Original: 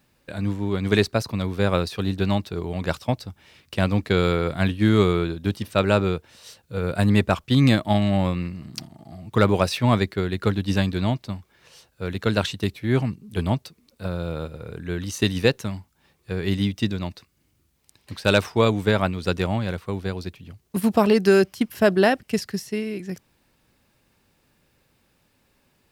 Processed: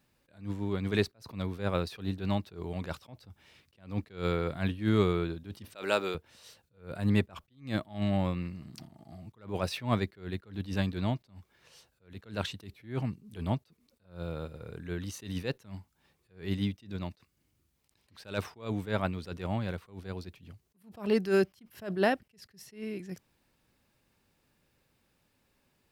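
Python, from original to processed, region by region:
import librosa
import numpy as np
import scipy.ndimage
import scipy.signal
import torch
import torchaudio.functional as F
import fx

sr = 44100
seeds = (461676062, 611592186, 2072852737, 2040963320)

y = fx.chain(x, sr, fx.highpass(hz=340.0, slope=12),
    fx.high_shelf(hz=2900.0, db=10.0), at=(5.75, 6.15))
y = fx.dynamic_eq(y, sr, hz=7100.0, q=0.76, threshold_db=-47.0, ratio=4.0, max_db=-4)
y = fx.attack_slew(y, sr, db_per_s=170.0)
y = y * 10.0 ** (-7.5 / 20.0)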